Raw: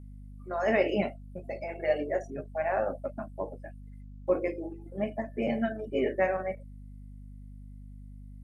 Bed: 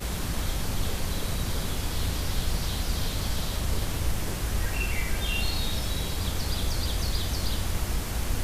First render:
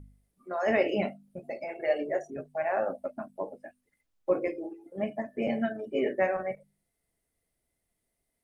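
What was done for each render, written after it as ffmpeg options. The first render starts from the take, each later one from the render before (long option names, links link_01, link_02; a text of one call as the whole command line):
ffmpeg -i in.wav -af "bandreject=frequency=50:width_type=h:width=4,bandreject=frequency=100:width_type=h:width=4,bandreject=frequency=150:width_type=h:width=4,bandreject=frequency=200:width_type=h:width=4,bandreject=frequency=250:width_type=h:width=4" out.wav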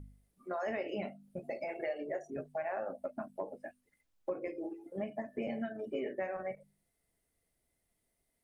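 ffmpeg -i in.wav -af "acompressor=threshold=-35dB:ratio=5" out.wav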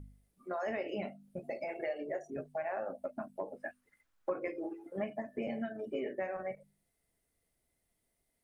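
ffmpeg -i in.wav -filter_complex "[0:a]asettb=1/sr,asplit=3[link_01][link_02][link_03];[link_01]atrim=end=3.564[link_04];[link_02]atrim=start=3.56:end=5.14,asetpts=PTS-STARTPTS,afade=type=in:duration=0.004:curve=qsin,afade=type=out:start_time=1.576:duration=0.004:curve=qsin,equalizer=frequency=1400:width=1.1:gain=10[link_05];[link_03]atrim=start=5.136[link_06];[link_04][link_05]acrossfade=duration=0.004:curve1=hsin:curve2=qsin[link_07];[link_07][link_06]acrossfade=duration=0.004:curve1=qsin:curve2=hsin" out.wav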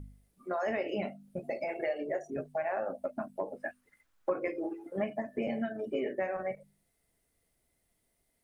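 ffmpeg -i in.wav -af "volume=4dB" out.wav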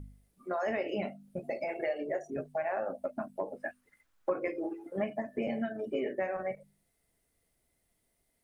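ffmpeg -i in.wav -af anull out.wav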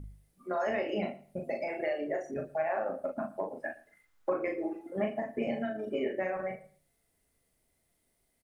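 ffmpeg -i in.wav -filter_complex "[0:a]asplit=2[link_01][link_02];[link_02]adelay=38,volume=-4.5dB[link_03];[link_01][link_03]amix=inputs=2:normalize=0,asplit=2[link_04][link_05];[link_05]adelay=113,lowpass=frequency=4100:poles=1,volume=-19dB,asplit=2[link_06][link_07];[link_07]adelay=113,lowpass=frequency=4100:poles=1,volume=0.23[link_08];[link_04][link_06][link_08]amix=inputs=3:normalize=0" out.wav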